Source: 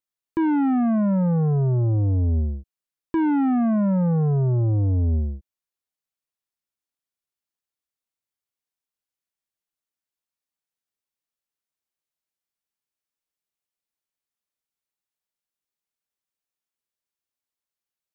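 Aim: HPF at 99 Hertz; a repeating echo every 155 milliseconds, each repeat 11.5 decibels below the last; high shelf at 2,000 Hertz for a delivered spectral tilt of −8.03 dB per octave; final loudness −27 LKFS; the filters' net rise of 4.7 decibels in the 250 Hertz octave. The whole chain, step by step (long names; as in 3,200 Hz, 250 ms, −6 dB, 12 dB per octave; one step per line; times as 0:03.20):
high-pass filter 99 Hz
parametric band 250 Hz +6 dB
high-shelf EQ 2,000 Hz +5 dB
repeating echo 155 ms, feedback 27%, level −11.5 dB
level −8.5 dB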